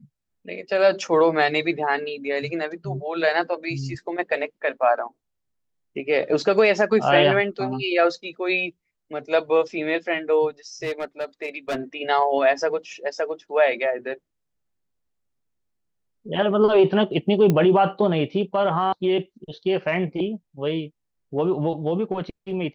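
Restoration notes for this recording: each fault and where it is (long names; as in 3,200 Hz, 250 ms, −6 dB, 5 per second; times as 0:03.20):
0:10.83–0:11.76: clipping −22 dBFS
0:17.50: click −9 dBFS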